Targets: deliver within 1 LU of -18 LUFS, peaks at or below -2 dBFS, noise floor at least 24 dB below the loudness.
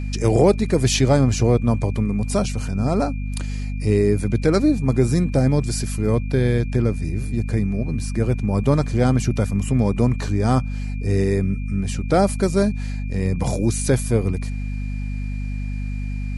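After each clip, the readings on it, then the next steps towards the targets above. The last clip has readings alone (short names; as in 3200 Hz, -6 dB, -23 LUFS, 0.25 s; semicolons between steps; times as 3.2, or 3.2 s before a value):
hum 50 Hz; harmonics up to 250 Hz; hum level -23 dBFS; steady tone 2400 Hz; tone level -43 dBFS; loudness -21.0 LUFS; peak -3.0 dBFS; loudness target -18.0 LUFS
-> de-hum 50 Hz, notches 5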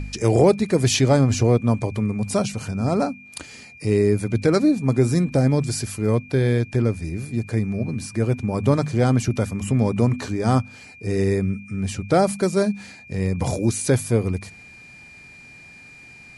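hum none; steady tone 2400 Hz; tone level -43 dBFS
-> notch 2400 Hz, Q 30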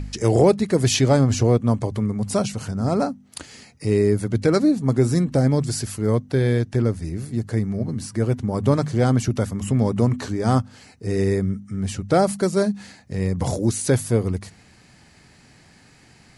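steady tone none; loudness -21.5 LUFS; peak -4.0 dBFS; loudness target -18.0 LUFS
-> gain +3.5 dB; limiter -2 dBFS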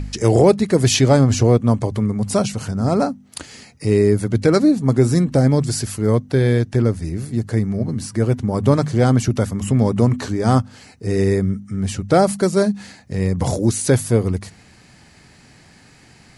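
loudness -18.0 LUFS; peak -2.0 dBFS; noise floor -49 dBFS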